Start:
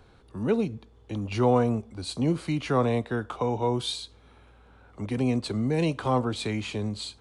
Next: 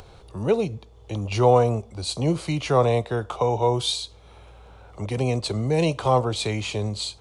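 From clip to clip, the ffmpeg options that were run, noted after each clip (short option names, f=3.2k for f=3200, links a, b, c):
-af "equalizer=f=250:t=o:w=0.67:g=-11,equalizer=f=630:t=o:w=0.67:g=3,equalizer=f=1.6k:t=o:w=0.67:g=-7,equalizer=f=6.3k:t=o:w=0.67:g=3,acompressor=mode=upward:threshold=-47dB:ratio=2.5,volume=6dB"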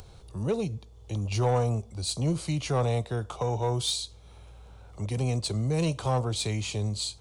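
-af "bass=f=250:g=7,treble=f=4k:g=9,asoftclip=type=tanh:threshold=-10.5dB,volume=-7.5dB"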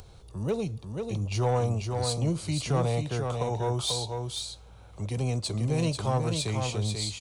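-af "aecho=1:1:490:0.562,volume=-1dB"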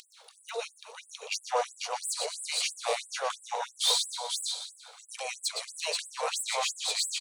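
-filter_complex "[0:a]aecho=1:1:122|244|366|488|610:0.335|0.161|0.0772|0.037|0.0178,asplit=2[a][b];[b]highpass=f=720:p=1,volume=13dB,asoftclip=type=tanh:threshold=-15dB[c];[a][c]amix=inputs=2:normalize=0,lowpass=f=7.8k:p=1,volume=-6dB,afftfilt=real='re*gte(b*sr/1024,400*pow(7800/400,0.5+0.5*sin(2*PI*3*pts/sr)))':imag='im*gte(b*sr/1024,400*pow(7800/400,0.5+0.5*sin(2*PI*3*pts/sr)))':win_size=1024:overlap=0.75"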